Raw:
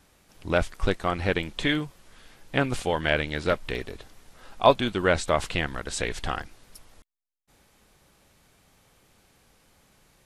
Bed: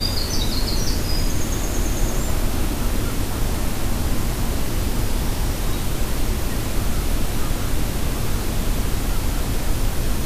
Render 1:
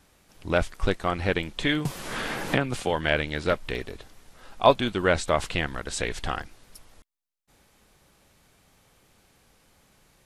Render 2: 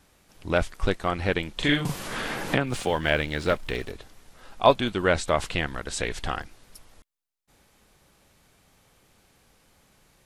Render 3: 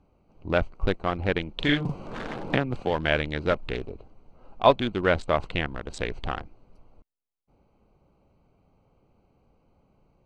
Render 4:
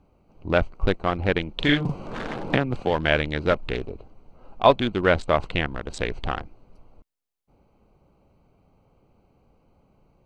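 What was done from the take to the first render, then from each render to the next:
0:01.85–0:02.91: multiband upward and downward compressor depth 100%
0:01.53–0:02.08: double-tracking delay 41 ms −2.5 dB; 0:02.67–0:03.92: mu-law and A-law mismatch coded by mu
adaptive Wiener filter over 25 samples; low-pass filter 5,800 Hz 12 dB per octave
level +3 dB; brickwall limiter −2 dBFS, peak gain reduction 2 dB

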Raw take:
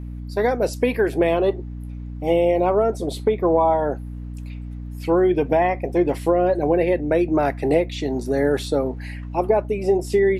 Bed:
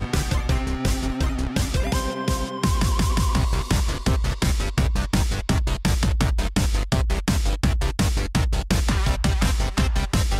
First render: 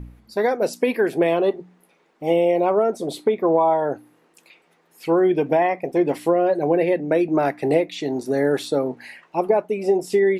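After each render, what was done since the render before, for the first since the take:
hum removal 60 Hz, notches 5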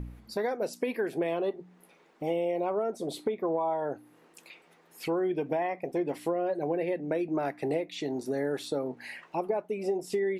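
downward compressor 2 to 1, threshold −36 dBFS, peak gain reduction 12.5 dB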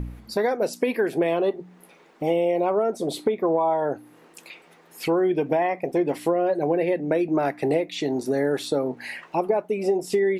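level +7.5 dB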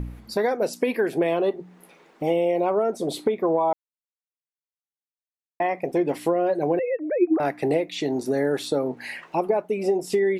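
0:03.73–0:05.60: silence
0:06.79–0:07.40: three sine waves on the formant tracks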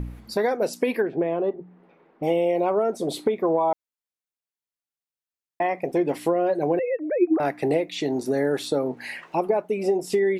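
0:01.02–0:02.23: head-to-tape spacing loss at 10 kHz 43 dB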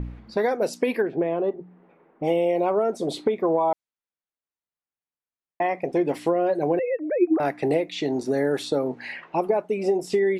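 low-pass that shuts in the quiet parts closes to 2,100 Hz, open at −19.5 dBFS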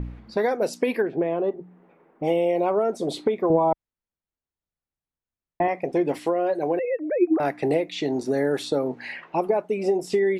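0:03.50–0:05.68: RIAA equalisation playback
0:06.19–0:06.85: low-shelf EQ 160 Hz −12 dB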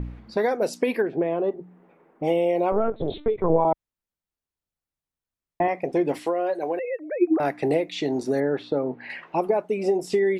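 0:02.72–0:03.65: linear-prediction vocoder at 8 kHz pitch kept
0:06.22–0:07.20: high-pass filter 270 Hz → 810 Hz 6 dB per octave
0:08.40–0:09.10: high-frequency loss of the air 350 metres

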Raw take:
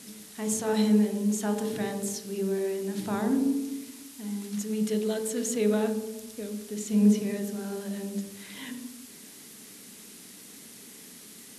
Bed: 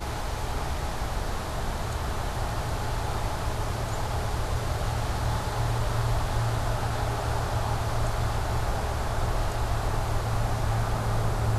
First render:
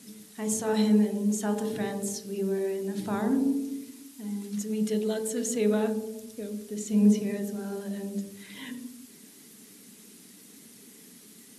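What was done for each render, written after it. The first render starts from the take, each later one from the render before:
broadband denoise 6 dB, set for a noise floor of −48 dBFS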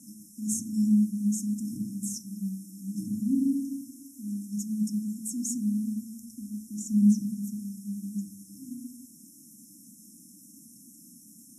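brick-wall band-stop 330–5,200 Hz
dynamic equaliser 760 Hz, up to +3 dB, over −48 dBFS, Q 1.2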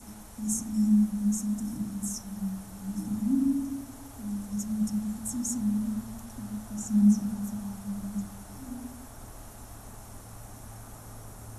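mix in bed −19.5 dB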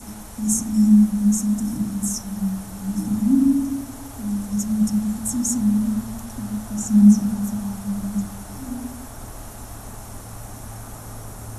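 level +9 dB

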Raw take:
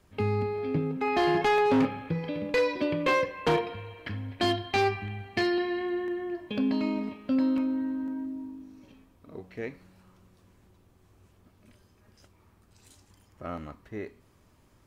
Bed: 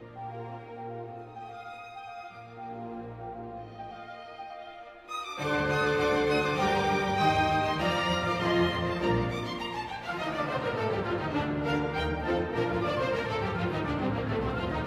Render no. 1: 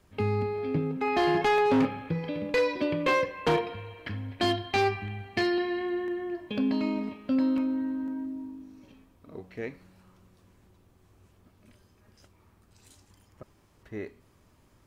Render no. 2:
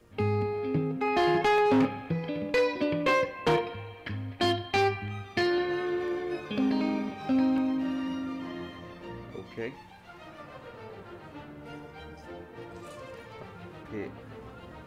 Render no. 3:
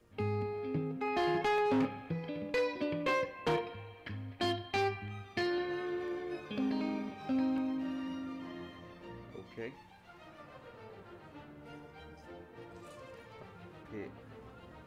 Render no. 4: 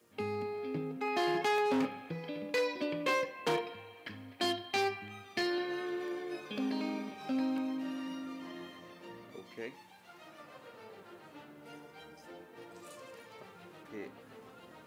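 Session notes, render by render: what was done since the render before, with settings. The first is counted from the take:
0:13.43–0:13.83: fill with room tone
mix in bed −15 dB
level −7 dB
high-pass filter 190 Hz 12 dB per octave; high-shelf EQ 5,000 Hz +10.5 dB

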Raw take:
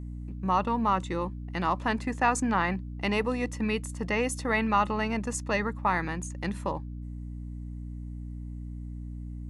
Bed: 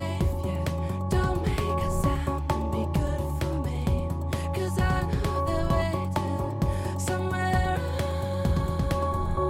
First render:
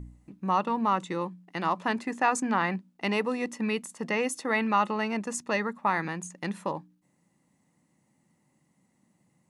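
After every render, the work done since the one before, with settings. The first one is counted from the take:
hum removal 60 Hz, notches 5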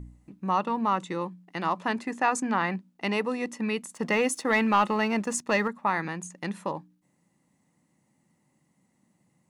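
0:03.91–0:05.68: leveller curve on the samples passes 1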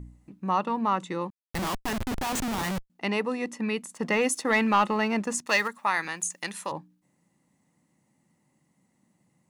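0:01.30–0:02.90: comparator with hysteresis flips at −36 dBFS
0:04.21–0:04.84: parametric band 9,700 Hz +3 dB 2.5 octaves
0:05.46–0:06.72: spectral tilt +4 dB per octave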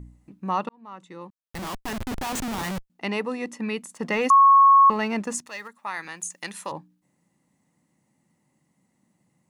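0:00.69–0:02.11: fade in
0:04.30–0:04.90: beep over 1,100 Hz −10.5 dBFS
0:05.49–0:06.59: fade in, from −15.5 dB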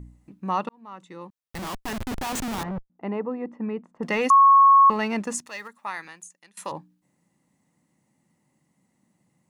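0:02.63–0:04.03: low-pass filter 1,000 Hz
0:05.89–0:06.57: fade out quadratic, to −23 dB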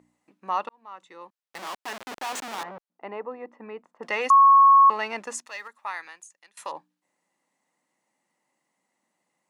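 high-pass filter 550 Hz 12 dB per octave
high-shelf EQ 9,100 Hz −9.5 dB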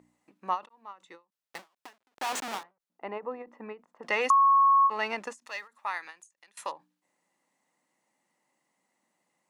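downward compressor 4 to 1, threshold −20 dBFS, peak gain reduction 6.5 dB
every ending faded ahead of time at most 270 dB per second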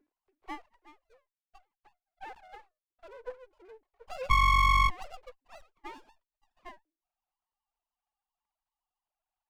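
three sine waves on the formant tracks
windowed peak hold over 17 samples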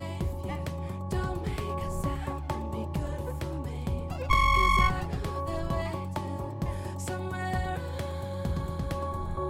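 mix in bed −6 dB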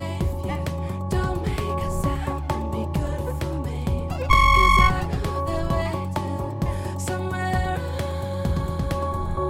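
level +7 dB

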